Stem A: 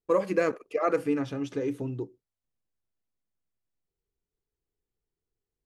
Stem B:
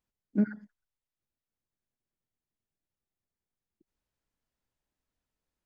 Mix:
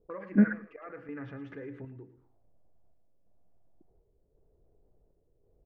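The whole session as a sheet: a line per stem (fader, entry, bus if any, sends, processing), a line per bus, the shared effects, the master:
−18.5 dB, 0.00 s, no send, echo send −13.5 dB, square-wave tremolo 0.92 Hz, depth 65%, duty 70%; envelope flattener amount 50%; automatic ducking −17 dB, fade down 1.55 s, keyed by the second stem
+1.0 dB, 0.00 s, no send, no echo send, no processing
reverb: not used
echo: repeating echo 111 ms, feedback 29%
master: low-shelf EQ 170 Hz +8 dB; envelope-controlled low-pass 480–1,800 Hz up, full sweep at −47 dBFS

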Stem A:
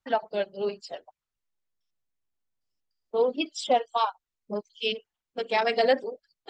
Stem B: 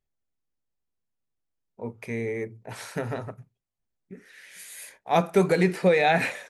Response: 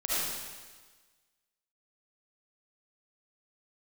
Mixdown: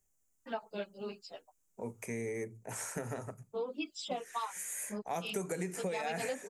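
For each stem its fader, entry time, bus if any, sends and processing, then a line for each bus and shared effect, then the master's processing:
−5.5 dB, 0.40 s, no send, comb filter 0.8 ms, depth 32%; string-ensemble chorus
−9.0 dB, 0.00 s, no send, high shelf with overshoot 5,400 Hz +9.5 dB, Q 3; mains-hum notches 50/100/150 Hz; multiband upward and downward compressor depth 40%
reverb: not used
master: downward compressor 6 to 1, threshold −33 dBFS, peak gain reduction 8 dB

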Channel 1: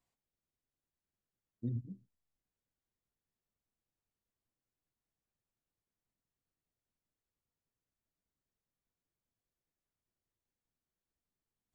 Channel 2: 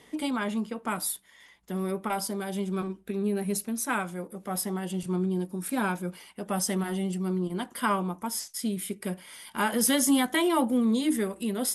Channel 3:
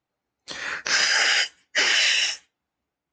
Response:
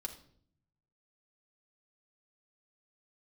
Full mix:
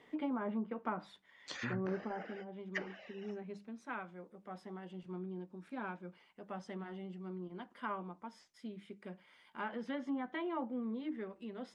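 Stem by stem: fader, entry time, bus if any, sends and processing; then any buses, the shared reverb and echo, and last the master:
+2.5 dB, 0.00 s, no send, downward compressor, threshold −38 dBFS, peak gain reduction 6 dB
0:02.12 −5 dB → 0:02.55 −13 dB, 0.00 s, no send, low-pass filter 2,600 Hz 12 dB per octave; mains-hum notches 50/100/150/200 Hz
−10.0 dB, 1.00 s, no send, reverb reduction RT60 0.6 s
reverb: not used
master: treble cut that deepens with the level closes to 550 Hz, closed at −29 dBFS; low-shelf EQ 130 Hz −9.5 dB

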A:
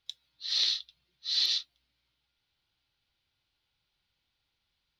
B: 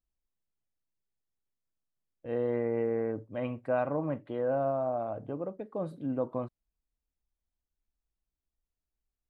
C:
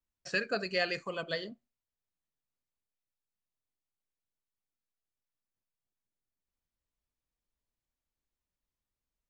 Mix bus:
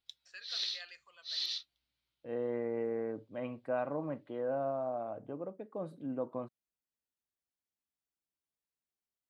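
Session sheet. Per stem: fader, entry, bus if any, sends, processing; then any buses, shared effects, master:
−9.0 dB, 0.00 s, no send, no processing
−5.0 dB, 0.00 s, no send, high-pass filter 150 Hz 12 dB per octave
−18.5 dB, 0.00 s, no send, high-pass filter 1,200 Hz 12 dB per octave; automatic gain control gain up to 7 dB; automatic ducking −13 dB, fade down 1.95 s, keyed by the second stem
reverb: not used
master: no processing

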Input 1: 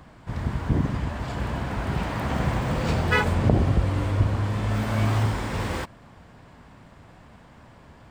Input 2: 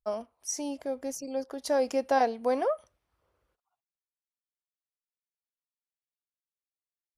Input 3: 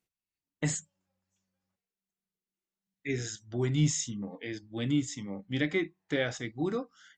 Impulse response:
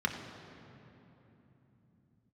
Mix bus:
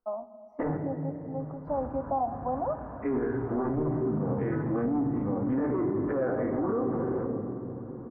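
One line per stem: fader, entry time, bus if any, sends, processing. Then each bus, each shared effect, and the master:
−4.0 dB, 1.40 s, send −11.5 dB, downward compressor, threshold −25 dBFS, peak gain reduction 11 dB; automatic ducking −11 dB, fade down 1.50 s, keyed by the third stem
+1.0 dB, 0.00 s, send −13.5 dB, phaser with its sweep stopped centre 450 Hz, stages 6
+0.5 dB, 0.00 s, send −4.5 dB, every bin's largest magnitude spread in time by 60 ms; treble cut that deepens with the level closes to 1,300 Hz, closed at −25.5 dBFS; leveller curve on the samples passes 2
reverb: on, RT60 3.3 s, pre-delay 3 ms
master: low-pass filter 1,200 Hz 24 dB per octave; parametric band 140 Hz −12 dB 1.7 octaves; brickwall limiter −21 dBFS, peak gain reduction 11.5 dB

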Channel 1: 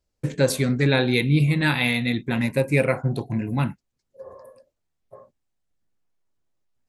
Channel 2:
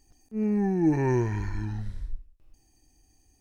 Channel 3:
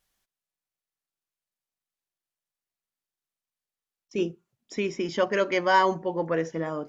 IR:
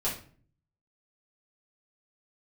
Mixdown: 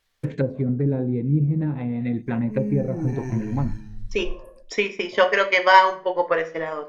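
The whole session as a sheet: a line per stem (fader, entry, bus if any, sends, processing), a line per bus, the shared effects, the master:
−1.0 dB, 0.00 s, send −24 dB, treble cut that deepens with the level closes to 390 Hz, closed at −17 dBFS
−4.0 dB, 2.15 s, send −12 dB, downward expander −52 dBFS; parametric band 760 Hz −11 dB 2.4 octaves; automatic ducking −16 dB, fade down 0.35 s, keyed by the third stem
−5.0 dB, 0.00 s, send −11 dB, transient designer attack +7 dB, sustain −9 dB; octave-band graphic EQ 125/250/500/1,000/2,000/4,000 Hz −12/−4/+5/+5/+9/+8 dB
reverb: on, RT60 0.45 s, pre-delay 4 ms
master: no processing

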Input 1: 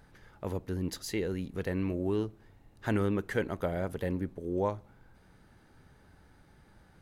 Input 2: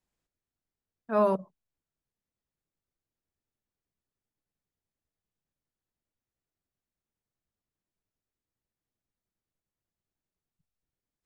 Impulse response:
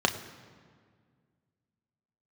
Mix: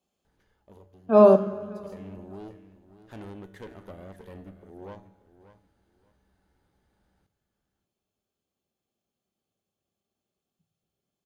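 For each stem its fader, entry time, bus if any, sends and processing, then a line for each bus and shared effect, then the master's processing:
+1.0 dB, 0.25 s, send −23 dB, echo send −12.5 dB, tuned comb filter 64 Hz, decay 0.93 s, harmonics odd, mix 70%; tube saturation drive 38 dB, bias 0.75; automatic ducking −15 dB, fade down 0.65 s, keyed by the second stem
+1.0 dB, 0.00 s, send −7 dB, echo send −20 dB, notch comb filter 950 Hz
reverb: on, RT60 1.9 s, pre-delay 3 ms
echo: repeating echo 583 ms, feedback 20%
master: no processing

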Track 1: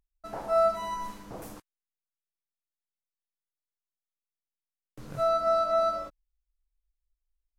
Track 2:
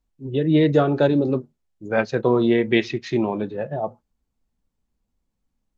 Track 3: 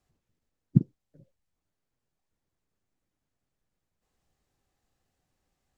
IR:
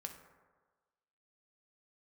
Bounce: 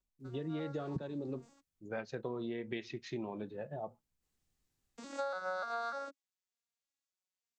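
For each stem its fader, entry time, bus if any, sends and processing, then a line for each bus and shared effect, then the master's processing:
+3.0 dB, 0.00 s, no send, vocoder with an arpeggio as carrier major triad, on F#3, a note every 296 ms; spectral tilt +4 dB per octave; automatic ducking −20 dB, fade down 0.30 s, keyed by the second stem
−15.0 dB, 0.00 s, no send, no processing
−5.0 dB, 0.20 s, no send, parametric band 690 Hz −8.5 dB 1.7 octaves; brickwall limiter −9 dBFS, peak gain reduction 2 dB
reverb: not used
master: high-shelf EQ 5,500 Hz +5.5 dB; downward compressor 16 to 1, threshold −35 dBFS, peak gain reduction 16.5 dB

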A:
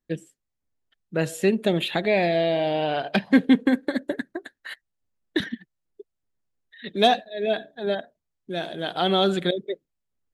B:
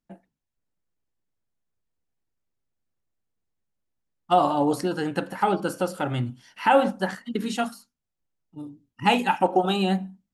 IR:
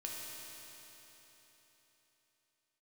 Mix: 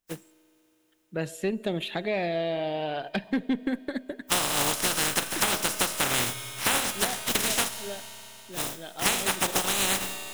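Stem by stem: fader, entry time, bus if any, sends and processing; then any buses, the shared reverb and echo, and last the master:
−6.0 dB, 0.00 s, send −20.5 dB, tube saturation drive 10 dB, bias 0.25; automatic ducking −7 dB, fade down 0.25 s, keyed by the second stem
+2.0 dB, 0.00 s, send −12 dB, compressing power law on the bin magnitudes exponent 0.19; notch filter 4,500 Hz, Q 12; speech leveller within 3 dB 0.5 s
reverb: on, RT60 3.8 s, pre-delay 3 ms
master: downward compressor 6 to 1, threshold −22 dBFS, peak gain reduction 11 dB

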